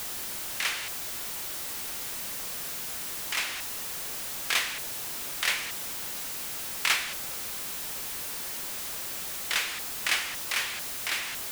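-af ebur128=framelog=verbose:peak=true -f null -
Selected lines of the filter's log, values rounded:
Integrated loudness:
  I:         -30.3 LUFS
  Threshold: -40.3 LUFS
Loudness range:
  LRA:         2.8 LU
  Threshold: -50.4 LUFS
  LRA low:   -31.9 LUFS
  LRA high:  -29.1 LUFS
True peak:
  Peak:      -10.5 dBFS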